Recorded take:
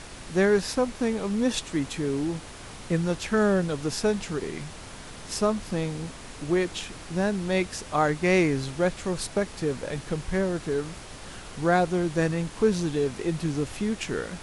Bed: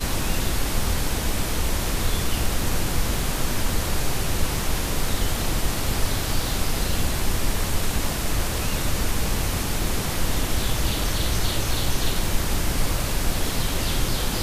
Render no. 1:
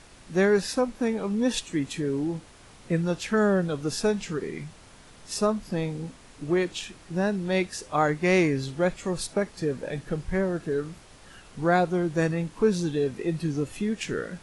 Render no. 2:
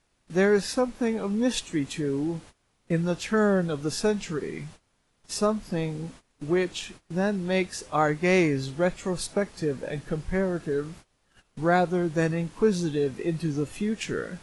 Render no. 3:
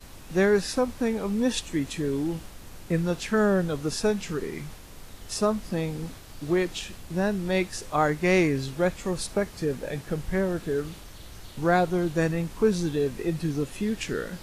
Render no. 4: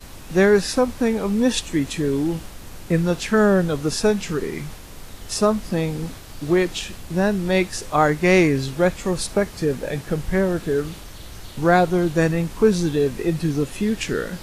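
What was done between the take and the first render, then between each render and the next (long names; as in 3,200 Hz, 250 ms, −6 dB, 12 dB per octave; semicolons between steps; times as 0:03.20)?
noise reduction from a noise print 9 dB
noise gate −45 dBFS, range −20 dB
mix in bed −21 dB
level +6 dB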